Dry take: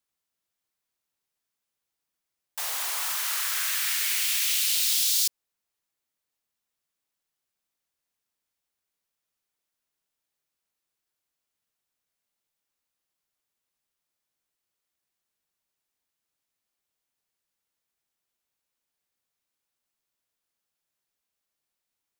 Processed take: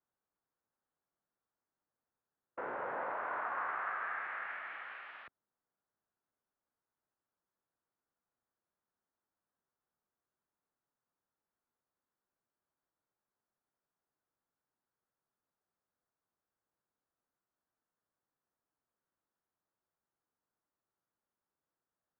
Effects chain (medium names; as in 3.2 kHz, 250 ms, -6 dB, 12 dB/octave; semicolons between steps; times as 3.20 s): mistuned SSB -210 Hz 280–2100 Hz; formant shift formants -3 st